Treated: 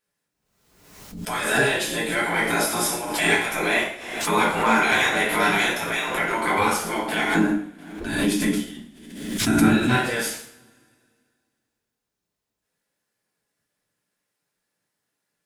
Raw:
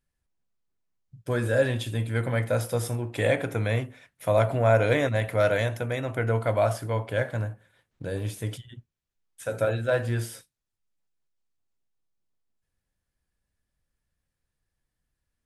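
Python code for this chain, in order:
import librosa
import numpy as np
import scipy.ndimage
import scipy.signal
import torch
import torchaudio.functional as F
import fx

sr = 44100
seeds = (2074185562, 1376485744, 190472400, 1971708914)

y = fx.spec_gate(x, sr, threshold_db=-15, keep='weak')
y = fx.low_shelf_res(y, sr, hz=380.0, db=9.0, q=3.0, at=(7.35, 9.93))
y = fx.leveller(y, sr, passes=1)
y = fx.rev_double_slope(y, sr, seeds[0], early_s=0.55, late_s=2.3, knee_db=-27, drr_db=-6.0)
y = fx.pre_swell(y, sr, db_per_s=55.0)
y = y * librosa.db_to_amplitude(3.5)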